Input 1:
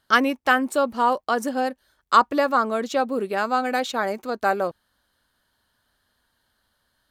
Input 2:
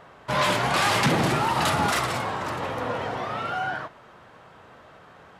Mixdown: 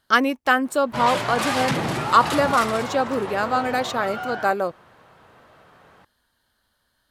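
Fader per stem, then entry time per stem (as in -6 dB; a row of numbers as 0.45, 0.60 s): +0.5, -2.5 dB; 0.00, 0.65 s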